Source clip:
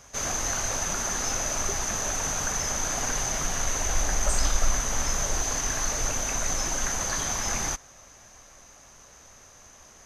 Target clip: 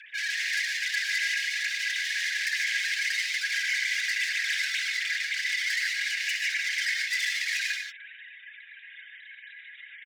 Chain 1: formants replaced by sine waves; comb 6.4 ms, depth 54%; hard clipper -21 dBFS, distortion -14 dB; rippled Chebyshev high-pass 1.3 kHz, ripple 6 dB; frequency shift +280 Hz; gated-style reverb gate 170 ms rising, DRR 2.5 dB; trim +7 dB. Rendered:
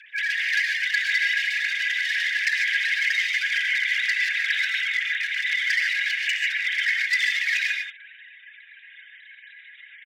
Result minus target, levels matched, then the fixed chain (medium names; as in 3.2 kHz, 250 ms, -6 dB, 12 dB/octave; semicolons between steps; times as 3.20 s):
hard clipper: distortion -8 dB
formants replaced by sine waves; comb 6.4 ms, depth 54%; hard clipper -30 dBFS, distortion -6 dB; rippled Chebyshev high-pass 1.3 kHz, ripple 6 dB; frequency shift +280 Hz; gated-style reverb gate 170 ms rising, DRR 2.5 dB; trim +7 dB